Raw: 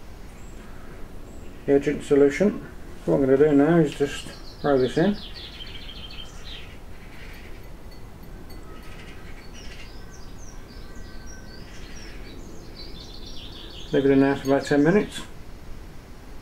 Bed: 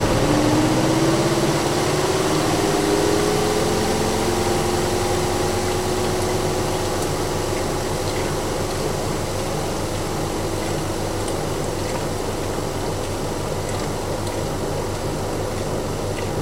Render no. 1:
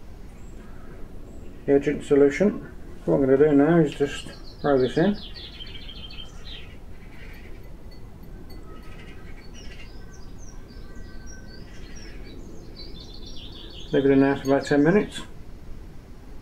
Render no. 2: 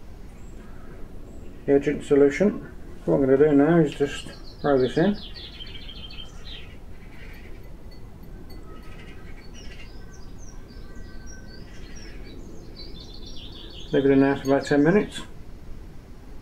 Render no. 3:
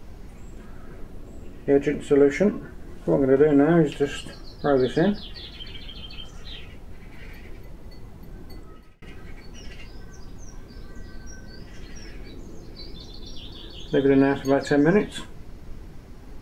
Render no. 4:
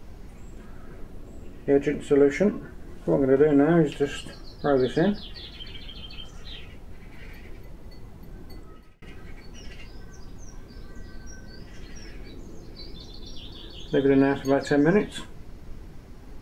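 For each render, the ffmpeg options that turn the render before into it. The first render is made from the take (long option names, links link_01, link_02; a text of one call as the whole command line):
ffmpeg -i in.wav -af "afftdn=noise_reduction=6:noise_floor=-43" out.wav
ffmpeg -i in.wav -af anull out.wav
ffmpeg -i in.wav -filter_complex "[0:a]asplit=2[link_01][link_02];[link_01]atrim=end=9.02,asetpts=PTS-STARTPTS,afade=type=out:start_time=8.57:duration=0.45[link_03];[link_02]atrim=start=9.02,asetpts=PTS-STARTPTS,afade=type=in:duration=0.004:curve=hsin[link_04];[link_03][link_04]concat=n=2:v=0:a=1" out.wav
ffmpeg -i in.wav -af "volume=-1.5dB" out.wav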